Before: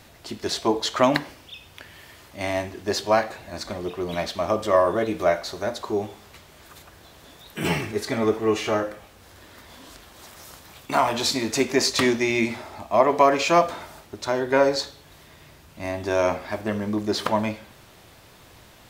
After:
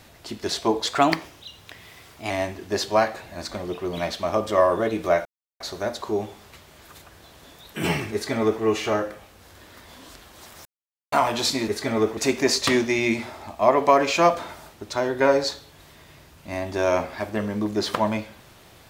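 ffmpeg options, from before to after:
-filter_complex "[0:a]asplit=8[a][b][c][d][e][f][g][h];[a]atrim=end=0.874[i];[b]atrim=start=0.87:end=2.46,asetpts=PTS-STARTPTS,asetrate=48951,aresample=44100,atrim=end_sample=63170,asetpts=PTS-STARTPTS[j];[c]atrim=start=2.456:end=5.41,asetpts=PTS-STARTPTS,afade=t=out:st=2.95:d=0.004:c=hsin,apad=pad_dur=0.35[k];[d]atrim=start=5.41:end=10.46,asetpts=PTS-STARTPTS,afade=t=in:d=0.004:c=hsin,afade=t=out:st=5.046:d=0.004:c=hsin[l];[e]atrim=start=10.46:end=10.93,asetpts=PTS-STARTPTS,volume=0[m];[f]atrim=start=10.93:end=11.492,asetpts=PTS-STARTPTS,afade=t=in:d=0.004:c=hsin[n];[g]atrim=start=7.938:end=8.432[o];[h]atrim=start=11.488[p];[i][j]acrossfade=d=0.004:c1=hsin:c2=hsin[q];[k][l][m][n]concat=n=4:v=0:a=1[r];[q][r]acrossfade=d=0.004:c1=hsin:c2=hsin[s];[s][o]acrossfade=d=0.004:c1=hsin:c2=hsin[t];[t][p]acrossfade=d=0.004:c1=hsin:c2=hsin"

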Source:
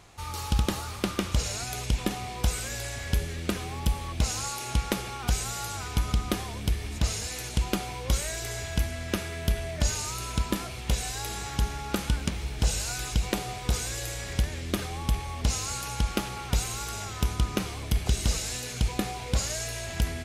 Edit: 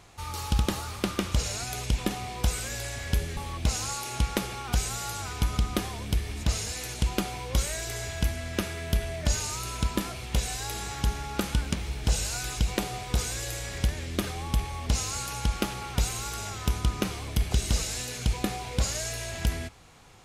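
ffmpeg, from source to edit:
-filter_complex "[0:a]asplit=2[a][b];[a]atrim=end=3.372[c];[b]atrim=start=3.918[d];[c][d]acrossfade=d=0.004:c1=hsin:c2=hsin"

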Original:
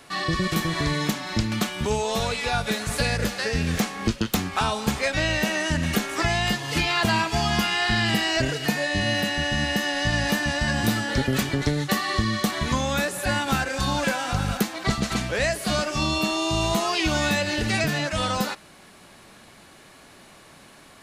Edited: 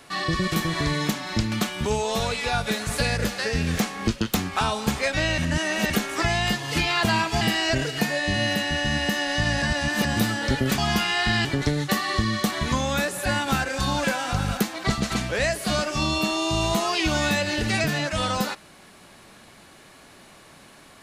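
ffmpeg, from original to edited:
-filter_complex "[0:a]asplit=8[a][b][c][d][e][f][g][h];[a]atrim=end=5.382[i];[b]atrim=start=5.378:end=5.902,asetpts=PTS-STARTPTS,areverse[j];[c]atrim=start=5.898:end=7.412[k];[d]atrim=start=8.078:end=10.292[l];[e]atrim=start=10.288:end=10.722,asetpts=PTS-STARTPTS,areverse[m];[f]atrim=start=10.718:end=11.452[n];[g]atrim=start=7.408:end=8.082[o];[h]atrim=start=11.448[p];[i][j]acrossfade=d=0.004:c1=hsin:c2=hsin[q];[q][k]acrossfade=d=0.004:c1=hsin:c2=hsin[r];[r][l]acrossfade=d=0.004:c1=hsin:c2=hsin[s];[s][m]acrossfade=d=0.004:c1=hsin:c2=hsin[t];[t][n]acrossfade=d=0.004:c1=hsin:c2=hsin[u];[u][o]acrossfade=d=0.004:c1=hsin:c2=hsin[v];[v][p]acrossfade=d=0.004:c1=hsin:c2=hsin"

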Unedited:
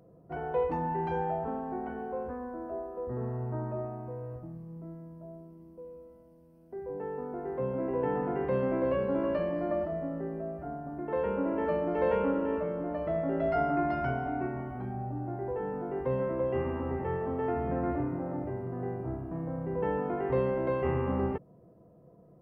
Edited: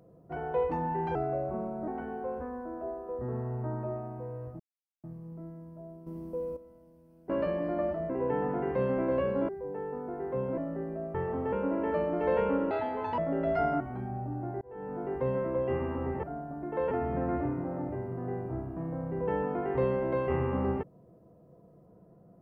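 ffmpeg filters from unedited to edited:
-filter_complex "[0:a]asplit=18[a][b][c][d][e][f][g][h][i][j][k][l][m][n][o][p][q][r];[a]atrim=end=1.154[s];[b]atrim=start=1.15:end=1.76,asetpts=PTS-STARTPTS,asetrate=37044,aresample=44100[t];[c]atrim=start=1.756:end=4.48,asetpts=PTS-STARTPTS,afade=t=out:st=2.72:d=0.004:c=hsin,apad=pad_dur=0.44[u];[d]atrim=start=4.48:end=5.512,asetpts=PTS-STARTPTS,afade=t=in:d=0.004:c=hsin[v];[e]atrim=start=5.508:end=6.012,asetpts=PTS-STARTPTS,volume=11dB[w];[f]atrim=start=6.008:end=6.742[x];[g]atrim=start=9.218:end=10.022[y];[h]atrim=start=7.828:end=9.222[z];[i]atrim=start=6.738:end=7.832[aa];[j]atrim=start=10.018:end=10.592[ab];[k]atrim=start=17.078:end=17.462[ac];[l]atrim=start=11.268:end=12.454[ad];[m]atrim=start=12.45:end=13.15,asetpts=PTS-STARTPTS,asetrate=64827,aresample=44100[ae];[n]atrim=start=13.146:end=13.772[af];[o]atrim=start=14.648:end=15.46,asetpts=PTS-STARTPTS,afade=t=out:st=0.808:d=0.004:c=hsin[ag];[p]atrim=start=15.46:end=17.082,asetpts=PTS-STARTPTS,afade=t=in:d=0.39[ah];[q]atrim=start=10.588:end=11.272[ai];[r]atrim=start=17.458[aj];[s][t]acrossfade=d=0.004:c1=hsin:c2=hsin[ak];[u][v]concat=n=2:v=0:a=1[al];[ak][al]acrossfade=d=0.004:c1=hsin:c2=hsin[am];[am][w]acrossfade=d=0.004:c1=hsin:c2=hsin[an];[an][x]acrossfade=d=0.004:c1=hsin:c2=hsin[ao];[ao][y]acrossfade=d=0.004:c1=hsin:c2=hsin[ap];[ap][z]acrossfade=d=0.004:c1=hsin:c2=hsin[aq];[aq][aa]acrossfade=d=0.004:c1=hsin:c2=hsin[ar];[ar][ab]acrossfade=d=0.004:c1=hsin:c2=hsin[as];[as][ac]acrossfade=d=0.004:c1=hsin:c2=hsin[at];[at][ad]acrossfade=d=0.004:c1=hsin:c2=hsin[au];[au][ae]acrossfade=d=0.004:c1=hsin:c2=hsin[av];[av][af]acrossfade=d=0.004:c1=hsin:c2=hsin[aw];[ag][ah]concat=n=2:v=0:a=1[ax];[aw][ax]acrossfade=d=0.004:c1=hsin:c2=hsin[ay];[ay][ai]acrossfade=d=0.004:c1=hsin:c2=hsin[az];[az][aj]acrossfade=d=0.004:c1=hsin:c2=hsin"

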